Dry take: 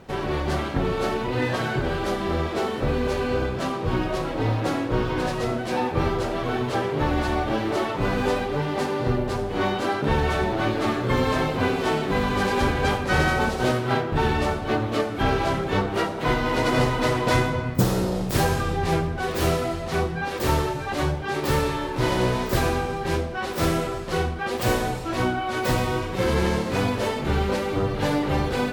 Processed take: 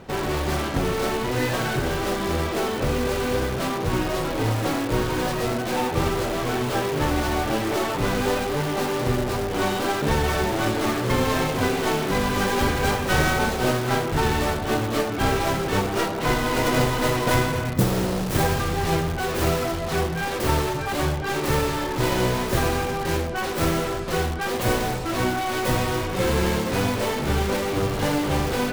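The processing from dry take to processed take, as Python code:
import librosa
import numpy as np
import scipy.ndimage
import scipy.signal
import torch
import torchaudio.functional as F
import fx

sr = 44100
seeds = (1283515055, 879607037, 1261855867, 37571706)

p1 = fx.tracing_dist(x, sr, depth_ms=0.39)
p2 = (np.mod(10.0 ** (23.5 / 20.0) * p1 + 1.0, 2.0) - 1.0) / 10.0 ** (23.5 / 20.0)
y = p1 + (p2 * 10.0 ** (-6.5 / 20.0))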